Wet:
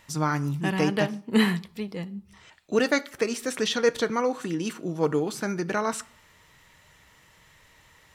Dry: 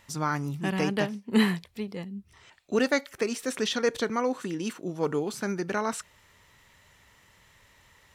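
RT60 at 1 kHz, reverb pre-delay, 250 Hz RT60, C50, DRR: 0.55 s, 6 ms, 0.60 s, 21.0 dB, 11.5 dB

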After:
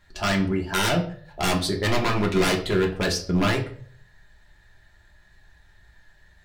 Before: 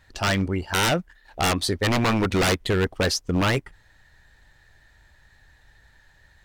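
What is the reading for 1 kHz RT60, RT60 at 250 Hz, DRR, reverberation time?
0.45 s, 0.55 s, −0.5 dB, 0.55 s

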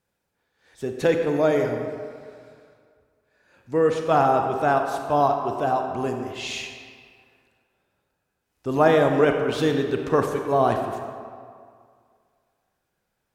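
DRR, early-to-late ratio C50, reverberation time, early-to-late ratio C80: 4.0 dB, 4.5 dB, 2.1 s, 6.0 dB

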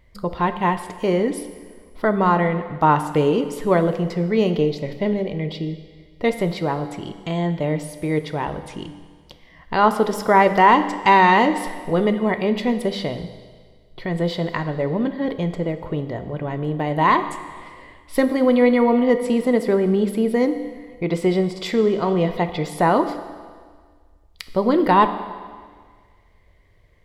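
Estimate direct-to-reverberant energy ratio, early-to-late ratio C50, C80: 9.0 dB, 10.5 dB, 12.0 dB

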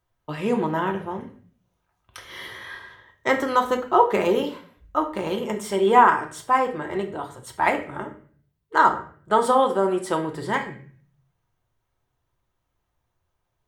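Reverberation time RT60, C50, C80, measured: 0.50 s, 11.0 dB, 14.5 dB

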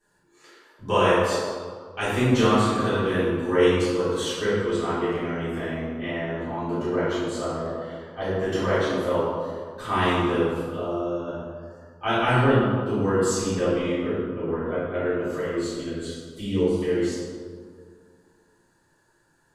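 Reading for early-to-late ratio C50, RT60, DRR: −2.5 dB, 2.1 s, −13.5 dB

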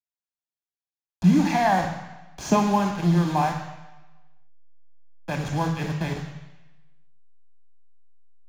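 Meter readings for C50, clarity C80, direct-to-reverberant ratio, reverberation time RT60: 5.5 dB, 7.5 dB, 3.0 dB, 1.1 s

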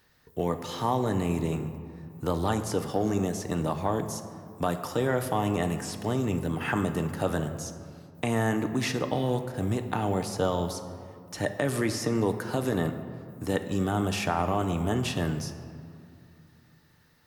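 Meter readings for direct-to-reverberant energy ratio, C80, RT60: 6.5 dB, 11.0 dB, 2.4 s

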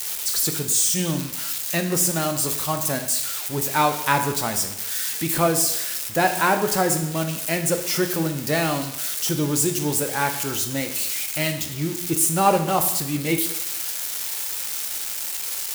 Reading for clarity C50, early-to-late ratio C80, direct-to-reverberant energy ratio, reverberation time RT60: 9.0 dB, 11.5 dB, 6.0 dB, 0.85 s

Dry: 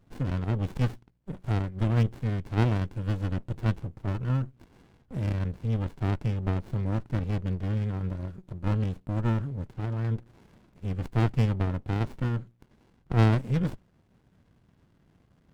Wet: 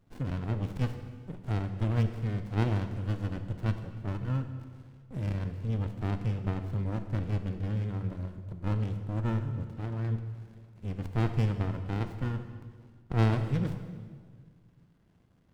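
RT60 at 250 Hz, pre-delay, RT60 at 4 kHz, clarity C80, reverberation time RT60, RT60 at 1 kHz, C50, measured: 2.1 s, 25 ms, 1.5 s, 10.0 dB, 1.8 s, 1.6 s, 9.0 dB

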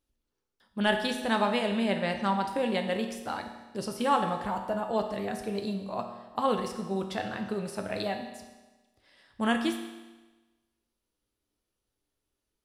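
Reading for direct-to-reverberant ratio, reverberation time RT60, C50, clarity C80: 4.0 dB, 1.2 s, 7.0 dB, 9.0 dB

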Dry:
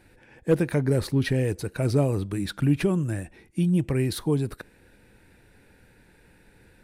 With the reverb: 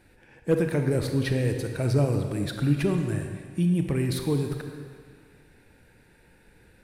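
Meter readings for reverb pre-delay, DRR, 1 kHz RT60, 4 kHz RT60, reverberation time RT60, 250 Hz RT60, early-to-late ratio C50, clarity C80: 27 ms, 4.5 dB, 2.0 s, 1.7 s, 2.0 s, 1.9 s, 5.5 dB, 6.5 dB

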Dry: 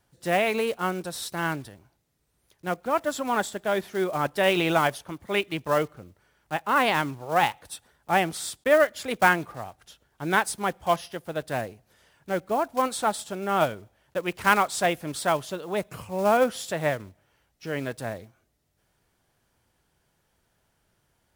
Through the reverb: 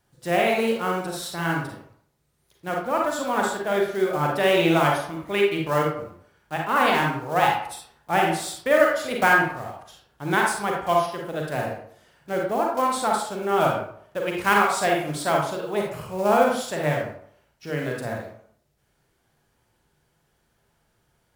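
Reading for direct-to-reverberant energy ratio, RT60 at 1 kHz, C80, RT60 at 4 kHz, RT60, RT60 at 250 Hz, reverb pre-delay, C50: −1.0 dB, 0.65 s, 6.5 dB, 0.35 s, 0.60 s, 0.55 s, 37 ms, 2.0 dB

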